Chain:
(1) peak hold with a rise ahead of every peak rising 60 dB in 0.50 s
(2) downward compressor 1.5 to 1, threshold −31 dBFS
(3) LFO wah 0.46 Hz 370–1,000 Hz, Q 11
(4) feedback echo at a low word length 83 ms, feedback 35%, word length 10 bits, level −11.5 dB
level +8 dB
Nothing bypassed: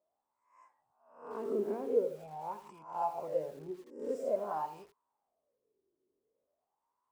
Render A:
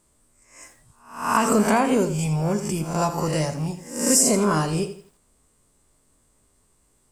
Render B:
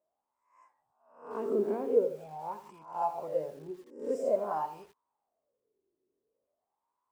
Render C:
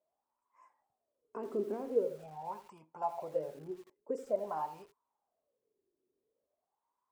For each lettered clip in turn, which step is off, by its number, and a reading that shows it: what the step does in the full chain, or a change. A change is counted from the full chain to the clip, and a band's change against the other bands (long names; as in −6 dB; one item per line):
3, 500 Hz band −16.0 dB
2, change in momentary loudness spread +3 LU
1, change in integrated loudness −1.5 LU